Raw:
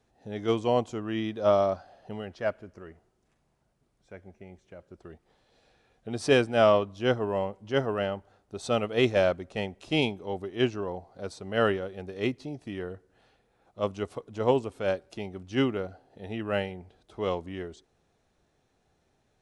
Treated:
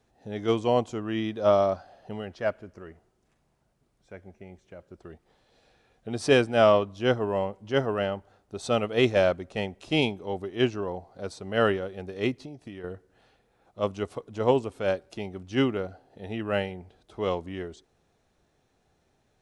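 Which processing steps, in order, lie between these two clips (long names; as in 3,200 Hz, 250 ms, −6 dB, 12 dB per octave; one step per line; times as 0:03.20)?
0:12.39–0:12.84: downward compressor 6 to 1, threshold −40 dBFS, peak gain reduction 8.5 dB
level +1.5 dB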